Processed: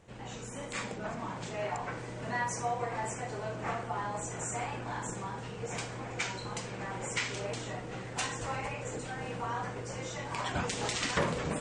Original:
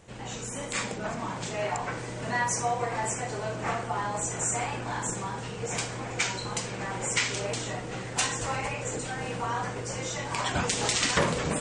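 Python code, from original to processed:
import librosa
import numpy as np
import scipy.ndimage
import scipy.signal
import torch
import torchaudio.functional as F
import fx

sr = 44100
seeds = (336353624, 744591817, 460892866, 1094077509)

y = fx.high_shelf(x, sr, hz=4300.0, db=-7.0)
y = F.gain(torch.from_numpy(y), -4.5).numpy()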